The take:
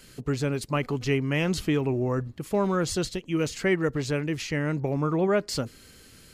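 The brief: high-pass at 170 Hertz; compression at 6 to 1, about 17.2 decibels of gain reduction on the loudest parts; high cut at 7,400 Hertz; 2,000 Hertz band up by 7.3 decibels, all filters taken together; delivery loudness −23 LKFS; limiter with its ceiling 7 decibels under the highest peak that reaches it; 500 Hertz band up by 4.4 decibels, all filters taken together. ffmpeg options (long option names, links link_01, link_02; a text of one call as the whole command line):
ffmpeg -i in.wav -af "highpass=170,lowpass=7400,equalizer=frequency=500:width_type=o:gain=5.5,equalizer=frequency=2000:width_type=o:gain=8.5,acompressor=threshold=-35dB:ratio=6,volume=17dB,alimiter=limit=-11dB:level=0:latency=1" out.wav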